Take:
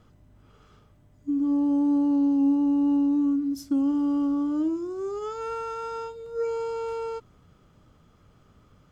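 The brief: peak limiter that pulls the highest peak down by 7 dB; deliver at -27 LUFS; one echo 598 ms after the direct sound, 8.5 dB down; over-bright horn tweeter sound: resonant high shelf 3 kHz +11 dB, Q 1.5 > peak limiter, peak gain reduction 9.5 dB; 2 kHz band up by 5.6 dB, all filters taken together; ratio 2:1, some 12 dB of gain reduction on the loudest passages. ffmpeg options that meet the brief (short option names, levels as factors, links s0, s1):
-af "equalizer=f=2000:t=o:g=8,acompressor=threshold=0.00708:ratio=2,alimiter=level_in=3.35:limit=0.0631:level=0:latency=1,volume=0.299,highshelf=f=3000:t=q:w=1.5:g=11,aecho=1:1:598:0.376,volume=5.96,alimiter=limit=0.0944:level=0:latency=1"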